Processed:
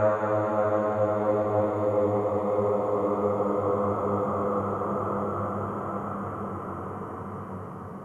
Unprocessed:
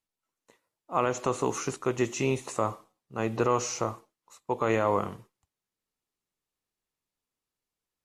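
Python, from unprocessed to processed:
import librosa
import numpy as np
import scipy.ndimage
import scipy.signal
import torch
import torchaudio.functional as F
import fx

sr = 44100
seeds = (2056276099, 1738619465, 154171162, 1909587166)

y = fx.high_shelf_res(x, sr, hz=2000.0, db=-7.0, q=1.5)
y = fx.filter_lfo_notch(y, sr, shape='sine', hz=3.0, low_hz=920.0, high_hz=4300.0, q=1.3)
y = fx.paulstretch(y, sr, seeds[0], factor=27.0, window_s=0.25, from_s=4.84)
y = y * librosa.db_to_amplitude(1.5)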